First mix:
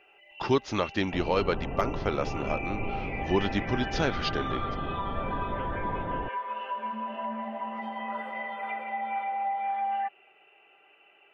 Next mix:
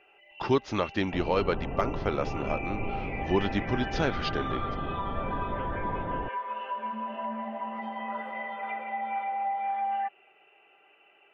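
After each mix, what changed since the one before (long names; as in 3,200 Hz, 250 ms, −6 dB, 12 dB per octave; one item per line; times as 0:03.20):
master: add high-shelf EQ 4,600 Hz −6.5 dB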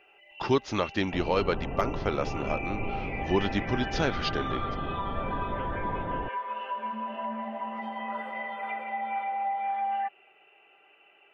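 master: add high-shelf EQ 4,600 Hz +6.5 dB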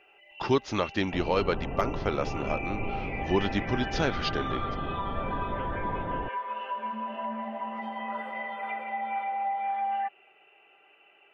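nothing changed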